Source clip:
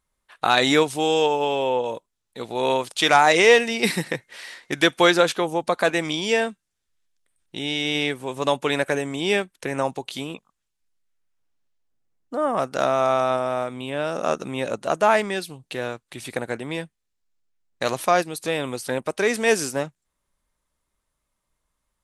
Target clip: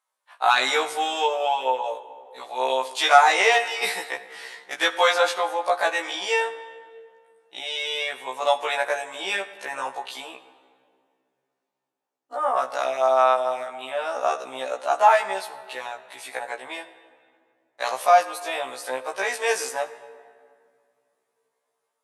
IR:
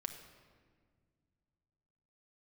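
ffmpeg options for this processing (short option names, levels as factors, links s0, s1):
-filter_complex "[0:a]highpass=f=750:t=q:w=1.8,asplit=2[s0][s1];[1:a]atrim=start_sample=2205,asetrate=33075,aresample=44100[s2];[s1][s2]afir=irnorm=-1:irlink=0,volume=1[s3];[s0][s3]amix=inputs=2:normalize=0,afftfilt=real='re*1.73*eq(mod(b,3),0)':imag='im*1.73*eq(mod(b,3),0)':win_size=2048:overlap=0.75,volume=0.531"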